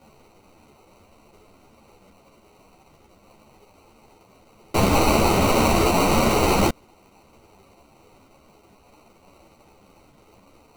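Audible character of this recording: a quantiser's noise floor 10-bit, dither triangular; phasing stages 12, 0.19 Hz, lowest notch 510–2400 Hz; aliases and images of a low sample rate 1700 Hz, jitter 0%; a shimmering, thickened sound

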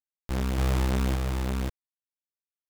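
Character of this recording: a quantiser's noise floor 10-bit, dither none; random-step tremolo; a shimmering, thickened sound

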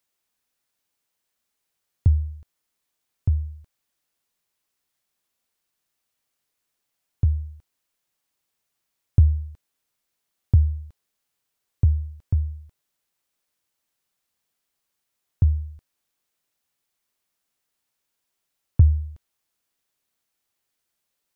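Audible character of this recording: noise floor -80 dBFS; spectral tilt -17.0 dB/oct

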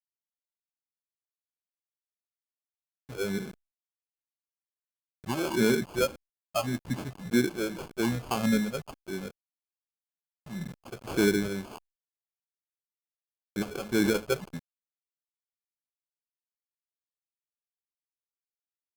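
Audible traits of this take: a quantiser's noise floor 8-bit, dither none; phasing stages 6, 1.8 Hz, lowest notch 260–1300 Hz; aliases and images of a low sample rate 1900 Hz, jitter 0%; Opus

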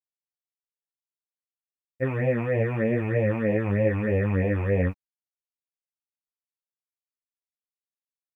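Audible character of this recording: phasing stages 8, 3.2 Hz, lowest notch 510–1400 Hz; a quantiser's noise floor 12-bit, dither none; a shimmering, thickened sound

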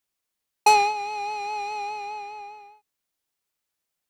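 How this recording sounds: noise floor -83 dBFS; spectral tilt +0.5 dB/oct

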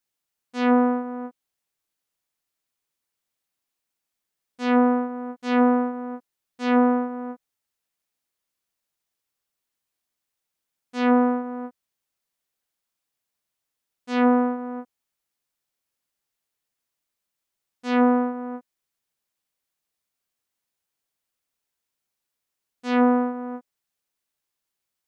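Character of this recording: noise floor -84 dBFS; spectral tilt -3.0 dB/oct

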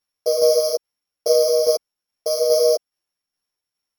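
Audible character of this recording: a buzz of ramps at a fixed pitch in blocks of 8 samples; tremolo saw down 2.4 Hz, depth 45%; a shimmering, thickened sound

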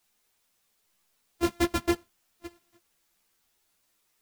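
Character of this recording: a buzz of ramps at a fixed pitch in blocks of 128 samples; random-step tremolo, depth 90%; a quantiser's noise floor 12-bit, dither triangular; a shimmering, thickened sound

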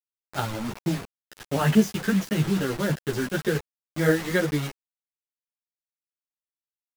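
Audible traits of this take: tremolo saw down 9.3 Hz, depth 30%; a quantiser's noise floor 6-bit, dither none; a shimmering, thickened sound

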